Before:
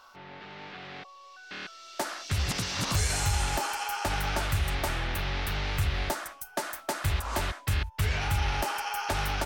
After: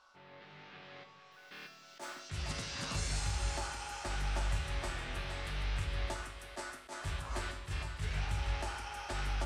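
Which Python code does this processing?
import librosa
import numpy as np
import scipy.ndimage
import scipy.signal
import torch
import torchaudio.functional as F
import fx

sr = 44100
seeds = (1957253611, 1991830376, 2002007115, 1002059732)

y = scipy.signal.sosfilt(scipy.signal.butter(4, 9500.0, 'lowpass', fs=sr, output='sos'), x)
y = fx.echo_split(y, sr, split_hz=350.0, low_ms=163, high_ms=464, feedback_pct=52, wet_db=-8.5)
y = fx.mod_noise(y, sr, seeds[0], snr_db=21, at=(1.31, 2.2))
y = fx.comb_fb(y, sr, f0_hz=51.0, decay_s=0.58, harmonics='odd', damping=0.0, mix_pct=80)
y = fx.attack_slew(y, sr, db_per_s=260.0)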